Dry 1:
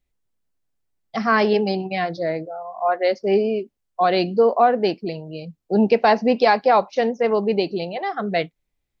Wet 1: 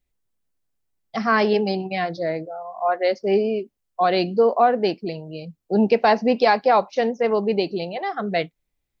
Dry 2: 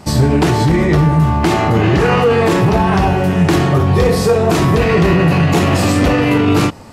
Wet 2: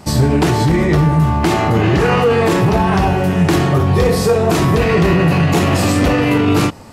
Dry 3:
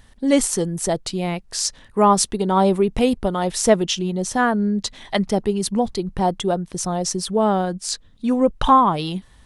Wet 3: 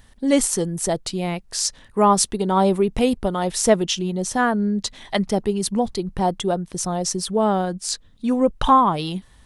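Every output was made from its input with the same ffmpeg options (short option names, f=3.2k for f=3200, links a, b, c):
-af "highshelf=f=9.7k:g=4,volume=-1dB"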